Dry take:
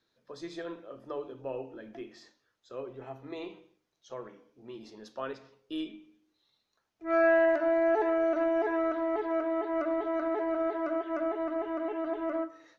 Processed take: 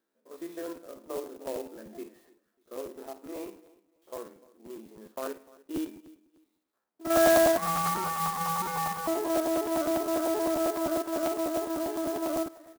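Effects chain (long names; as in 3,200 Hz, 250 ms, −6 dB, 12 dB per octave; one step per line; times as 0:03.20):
spectrum averaged block by block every 50 ms
high-shelf EQ 2,600 Hz −11.5 dB
0:07.57–0:09.07: ring modulation 490 Hz
in parallel at −5.5 dB: dead-zone distortion −50 dBFS
on the sum: linear-phase brick-wall high-pass 180 Hz
on a send: repeating echo 297 ms, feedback 28%, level −22 dB
on the sum: regular buffer underruns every 0.10 s, samples 512, repeat
converter with an unsteady clock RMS 0.057 ms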